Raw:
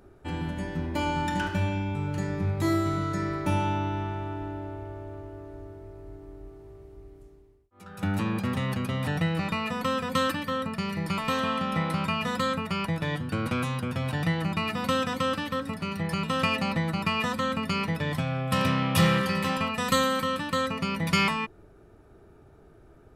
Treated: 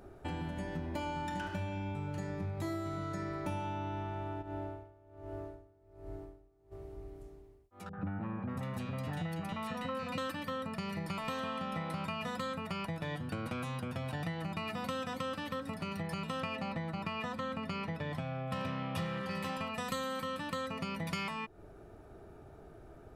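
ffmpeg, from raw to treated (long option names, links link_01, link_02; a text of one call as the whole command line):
ffmpeg -i in.wav -filter_complex "[0:a]asplit=3[link_01][link_02][link_03];[link_01]afade=type=out:start_time=4.41:duration=0.02[link_04];[link_02]aeval=exprs='val(0)*pow(10,-24*(0.5-0.5*cos(2*PI*1.3*n/s))/20)':channel_layout=same,afade=type=in:start_time=4.41:duration=0.02,afade=type=out:start_time=6.71:duration=0.02[link_05];[link_03]afade=type=in:start_time=6.71:duration=0.02[link_06];[link_04][link_05][link_06]amix=inputs=3:normalize=0,asettb=1/sr,asplit=3[link_07][link_08][link_09];[link_07]atrim=end=7.894[link_10];[link_08]atrim=start=7.89:end=10.18,asetpts=PTS-STARTPTS,afade=type=in:duration=0.004:curve=qsin,afade=type=out:start_time=2.286:duration=0.004:curve=qsin,acrossover=split=470|2000[link_11][link_12][link_13];[link_12]adelay=40[link_14];[link_13]adelay=600[link_15];[link_11][link_14][link_15]amix=inputs=3:normalize=0,atrim=end_sample=100989[link_16];[link_09]atrim=start=10.176[link_17];[link_10][link_16]acrossfade=duration=0.004:curve1=hsin:curve2=qsin[link_18];[link_18][link_17]acrossfade=duration=0.004:curve1=qsin:curve2=hsin,asettb=1/sr,asplit=3[link_19][link_20][link_21];[link_19]atrim=end=16.404[link_22];[link_20]atrim=start=16.4:end=19.31,asetpts=PTS-STARTPTS,afade=type=in:duration=0.004:curve=qsin,afade=type=out:start_time=2.906:duration=0.004:curve=qsin,lowpass=frequency=3600:poles=1[link_23];[link_21]atrim=start=19.306[link_24];[link_22][link_23]acrossfade=duration=0.004:curve1=hsin:curve2=qsin[link_25];[link_25][link_24]acrossfade=duration=0.004:curve1=qsin:curve2=hsin,equalizer=frequency=690:width=2.6:gain=5.5,acompressor=threshold=-37dB:ratio=4" out.wav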